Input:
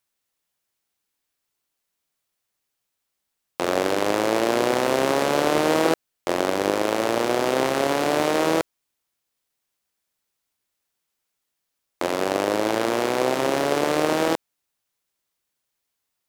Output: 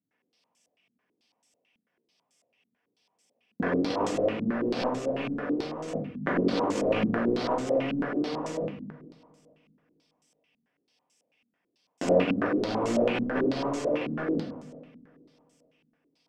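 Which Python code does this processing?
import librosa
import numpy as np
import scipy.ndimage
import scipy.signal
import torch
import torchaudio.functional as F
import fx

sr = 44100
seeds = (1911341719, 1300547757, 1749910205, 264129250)

y = fx.lower_of_two(x, sr, delay_ms=0.37)
y = scipy.signal.sosfilt(scipy.signal.butter(4, 120.0, 'highpass', fs=sr, output='sos'), y)
y = fx.hum_notches(y, sr, base_hz=50, count=5)
y = y + 0.37 * np.pad(y, (int(4.1 * sr / 1000.0), 0))[:len(y)]
y = fx.over_compress(y, sr, threshold_db=-30.0, ratio=-0.5)
y = fx.echo_heads(y, sr, ms=132, heads='second and third', feedback_pct=45, wet_db=-22.0)
y = fx.room_shoebox(y, sr, seeds[0], volume_m3=110.0, walls='mixed', distance_m=1.6)
y = fx.filter_held_lowpass(y, sr, hz=9.1, low_hz=220.0, high_hz=7200.0)
y = y * librosa.db_to_amplitude(-6.0)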